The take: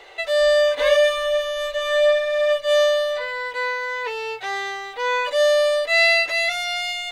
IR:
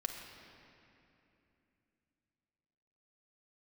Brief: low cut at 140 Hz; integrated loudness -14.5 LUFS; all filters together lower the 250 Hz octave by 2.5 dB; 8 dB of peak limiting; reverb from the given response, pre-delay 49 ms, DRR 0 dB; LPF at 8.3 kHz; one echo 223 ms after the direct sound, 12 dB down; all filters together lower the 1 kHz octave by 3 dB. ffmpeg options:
-filter_complex "[0:a]highpass=140,lowpass=8300,equalizer=f=250:t=o:g=-4.5,equalizer=f=1000:t=o:g=-3.5,alimiter=limit=0.178:level=0:latency=1,aecho=1:1:223:0.251,asplit=2[s0][s1];[1:a]atrim=start_sample=2205,adelay=49[s2];[s1][s2]afir=irnorm=-1:irlink=0,volume=0.891[s3];[s0][s3]amix=inputs=2:normalize=0,volume=1.41"

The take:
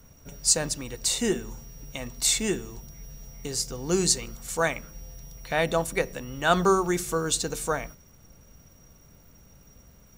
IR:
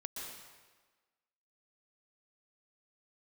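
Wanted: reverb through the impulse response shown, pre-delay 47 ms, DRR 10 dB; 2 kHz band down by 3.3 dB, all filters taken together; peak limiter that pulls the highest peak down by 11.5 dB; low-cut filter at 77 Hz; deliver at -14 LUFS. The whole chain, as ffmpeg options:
-filter_complex "[0:a]highpass=77,equalizer=f=2000:t=o:g=-4.5,alimiter=limit=0.106:level=0:latency=1,asplit=2[s0][s1];[1:a]atrim=start_sample=2205,adelay=47[s2];[s1][s2]afir=irnorm=-1:irlink=0,volume=0.355[s3];[s0][s3]amix=inputs=2:normalize=0,volume=7.08"

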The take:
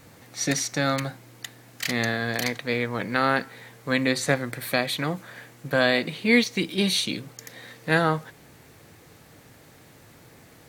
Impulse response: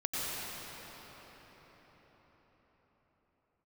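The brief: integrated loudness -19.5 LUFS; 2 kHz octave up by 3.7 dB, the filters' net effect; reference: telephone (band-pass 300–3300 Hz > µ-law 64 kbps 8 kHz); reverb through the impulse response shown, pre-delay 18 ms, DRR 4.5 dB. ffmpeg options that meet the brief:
-filter_complex "[0:a]equalizer=f=2000:t=o:g=5,asplit=2[s0][s1];[1:a]atrim=start_sample=2205,adelay=18[s2];[s1][s2]afir=irnorm=-1:irlink=0,volume=0.266[s3];[s0][s3]amix=inputs=2:normalize=0,highpass=300,lowpass=3300,volume=1.68" -ar 8000 -c:a pcm_mulaw

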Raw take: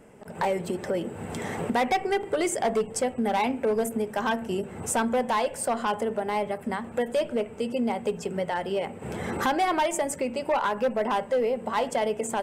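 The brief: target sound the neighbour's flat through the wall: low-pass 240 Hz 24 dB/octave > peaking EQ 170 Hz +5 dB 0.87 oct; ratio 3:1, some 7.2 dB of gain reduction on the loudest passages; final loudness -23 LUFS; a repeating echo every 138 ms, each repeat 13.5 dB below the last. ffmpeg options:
-af "acompressor=threshold=0.0282:ratio=3,lowpass=f=240:w=0.5412,lowpass=f=240:w=1.3066,equalizer=f=170:t=o:w=0.87:g=5,aecho=1:1:138|276:0.211|0.0444,volume=7.08"

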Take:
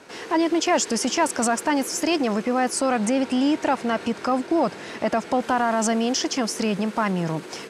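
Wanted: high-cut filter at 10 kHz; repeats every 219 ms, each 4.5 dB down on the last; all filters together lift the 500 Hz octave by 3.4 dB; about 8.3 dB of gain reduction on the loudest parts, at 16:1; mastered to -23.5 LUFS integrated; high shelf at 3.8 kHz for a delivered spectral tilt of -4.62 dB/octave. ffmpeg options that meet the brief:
-af "lowpass=10000,equalizer=f=500:t=o:g=4.5,highshelf=f=3800:g=-8,acompressor=threshold=0.0708:ratio=16,aecho=1:1:219|438|657|876|1095|1314|1533|1752|1971:0.596|0.357|0.214|0.129|0.0772|0.0463|0.0278|0.0167|0.01,volume=1.5"

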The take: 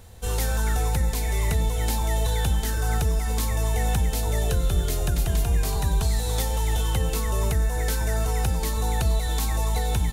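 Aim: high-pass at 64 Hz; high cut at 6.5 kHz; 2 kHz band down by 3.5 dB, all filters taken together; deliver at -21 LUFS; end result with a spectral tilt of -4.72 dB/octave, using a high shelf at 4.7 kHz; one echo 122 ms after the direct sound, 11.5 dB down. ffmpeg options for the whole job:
-af "highpass=64,lowpass=6500,equalizer=f=2000:t=o:g=-5,highshelf=f=4700:g=4,aecho=1:1:122:0.266,volume=2.11"

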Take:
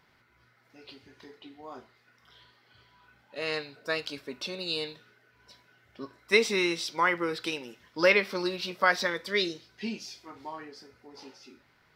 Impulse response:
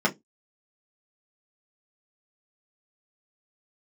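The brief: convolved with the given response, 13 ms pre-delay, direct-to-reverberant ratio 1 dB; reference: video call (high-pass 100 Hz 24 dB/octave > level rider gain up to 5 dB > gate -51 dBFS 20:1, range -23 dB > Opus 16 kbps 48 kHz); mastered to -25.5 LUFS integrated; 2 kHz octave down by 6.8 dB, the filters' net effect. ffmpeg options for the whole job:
-filter_complex "[0:a]equalizer=f=2000:t=o:g=-8.5,asplit=2[s0][s1];[1:a]atrim=start_sample=2205,adelay=13[s2];[s1][s2]afir=irnorm=-1:irlink=0,volume=0.188[s3];[s0][s3]amix=inputs=2:normalize=0,highpass=f=100:w=0.5412,highpass=f=100:w=1.3066,dynaudnorm=m=1.78,agate=range=0.0708:threshold=0.00282:ratio=20,volume=1.41" -ar 48000 -c:a libopus -b:a 16k

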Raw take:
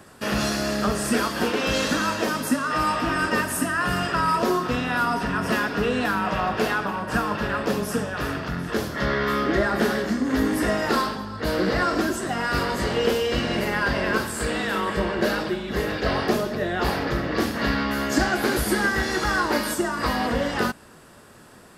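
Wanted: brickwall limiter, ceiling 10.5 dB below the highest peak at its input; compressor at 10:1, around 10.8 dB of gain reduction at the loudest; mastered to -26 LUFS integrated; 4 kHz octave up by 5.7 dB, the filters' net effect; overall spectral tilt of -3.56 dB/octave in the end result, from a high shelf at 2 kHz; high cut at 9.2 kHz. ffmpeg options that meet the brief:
-af "lowpass=9200,highshelf=f=2000:g=4,equalizer=f=4000:t=o:g=3.5,acompressor=threshold=0.0447:ratio=10,volume=2.24,alimiter=limit=0.133:level=0:latency=1"

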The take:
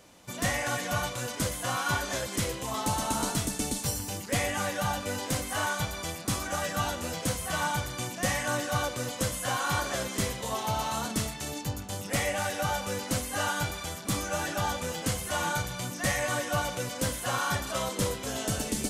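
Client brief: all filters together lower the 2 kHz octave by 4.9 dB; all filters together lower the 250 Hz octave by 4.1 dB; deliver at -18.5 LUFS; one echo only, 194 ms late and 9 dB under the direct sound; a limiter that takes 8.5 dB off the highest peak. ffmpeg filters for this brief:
-af "equalizer=f=250:t=o:g=-5.5,equalizer=f=2000:t=o:g=-7,alimiter=limit=0.0668:level=0:latency=1,aecho=1:1:194:0.355,volume=5.62"

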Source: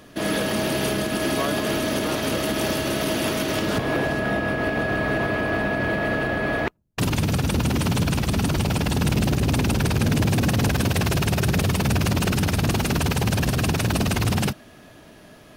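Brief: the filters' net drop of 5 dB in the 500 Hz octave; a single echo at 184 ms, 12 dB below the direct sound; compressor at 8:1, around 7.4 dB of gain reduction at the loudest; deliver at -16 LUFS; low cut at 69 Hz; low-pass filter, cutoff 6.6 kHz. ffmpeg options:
-af "highpass=69,lowpass=6600,equalizer=f=500:t=o:g=-7,acompressor=threshold=0.0501:ratio=8,aecho=1:1:184:0.251,volume=4.73"

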